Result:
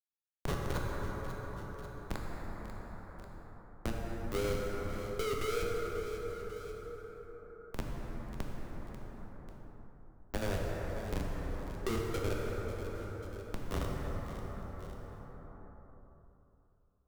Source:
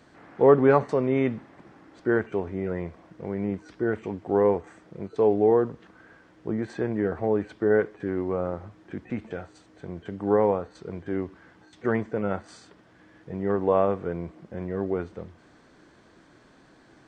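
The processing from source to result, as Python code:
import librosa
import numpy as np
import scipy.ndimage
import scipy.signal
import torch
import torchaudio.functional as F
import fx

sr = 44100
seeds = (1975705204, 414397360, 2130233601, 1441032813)

p1 = fx.highpass(x, sr, hz=62.0, slope=6)
p2 = fx.peak_eq(p1, sr, hz=140.0, db=-9.0, octaves=0.23)
p3 = fx.rider(p2, sr, range_db=3, speed_s=0.5)
p4 = p2 + (p3 * librosa.db_to_amplitude(1.5))
p5 = fx.sample_hold(p4, sr, seeds[0], rate_hz=2600.0, jitter_pct=20)
p6 = fx.filter_lfo_bandpass(p5, sr, shape='sine', hz=0.15, low_hz=410.0, high_hz=1900.0, q=5.2)
p7 = fx.schmitt(p6, sr, flips_db=-20.5)
p8 = fx.tube_stage(p7, sr, drive_db=38.0, bias=0.75)
p9 = p8 + fx.echo_feedback(p8, sr, ms=542, feedback_pct=30, wet_db=-19.5, dry=0)
p10 = fx.rev_plate(p9, sr, seeds[1], rt60_s=3.0, hf_ratio=0.4, predelay_ms=0, drr_db=-2.0)
p11 = fx.band_squash(p10, sr, depth_pct=70)
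y = p11 * librosa.db_to_amplitude(6.5)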